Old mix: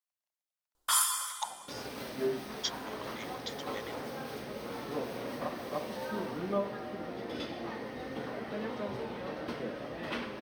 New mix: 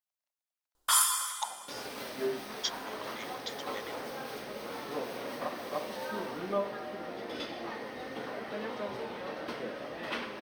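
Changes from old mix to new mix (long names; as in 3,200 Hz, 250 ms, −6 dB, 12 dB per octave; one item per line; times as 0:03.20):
second sound: add low-shelf EQ 250 Hz −11 dB
reverb: on, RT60 2.7 s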